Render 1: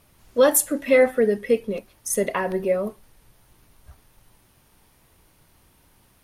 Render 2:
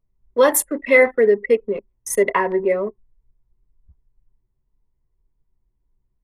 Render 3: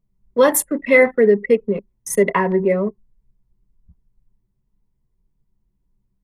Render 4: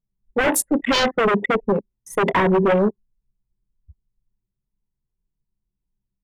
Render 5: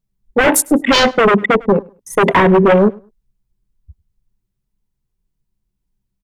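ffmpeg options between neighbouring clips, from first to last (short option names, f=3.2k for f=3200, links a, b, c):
-filter_complex "[0:a]anlmdn=25.1,equalizer=f=400:t=o:w=0.33:g=9,equalizer=f=1k:t=o:w=0.33:g=10,equalizer=f=2k:t=o:w=0.33:g=10,acrossover=split=220|1300[a][b][c];[a]alimiter=level_in=11dB:limit=-24dB:level=0:latency=1,volume=-11dB[d];[d][b][c]amix=inputs=3:normalize=0"
-af "equalizer=f=180:w=1.9:g=13"
-af "acontrast=66,aeval=exprs='0.335*(abs(mod(val(0)/0.335+3,4)-2)-1)':c=same,afwtdn=0.0794,volume=-2dB"
-af "aecho=1:1:102|204:0.0631|0.0133,volume=7dB"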